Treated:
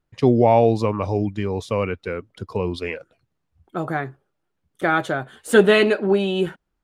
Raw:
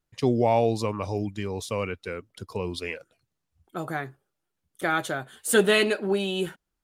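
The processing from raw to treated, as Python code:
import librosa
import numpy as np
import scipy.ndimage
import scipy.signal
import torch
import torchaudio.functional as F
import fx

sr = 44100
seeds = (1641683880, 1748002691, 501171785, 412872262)

y = fx.lowpass(x, sr, hz=1900.0, slope=6)
y = F.gain(torch.from_numpy(y), 7.0).numpy()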